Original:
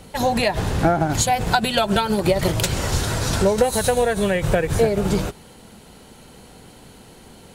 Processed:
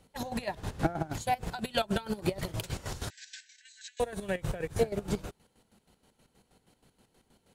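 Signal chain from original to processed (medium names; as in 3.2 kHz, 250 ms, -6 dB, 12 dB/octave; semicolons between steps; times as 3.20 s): square tremolo 6.3 Hz, depth 65%, duty 45%; 3.10–4.00 s: brick-wall FIR band-pass 1.5–8.1 kHz; upward expansion 1.5:1, over -36 dBFS; trim -7.5 dB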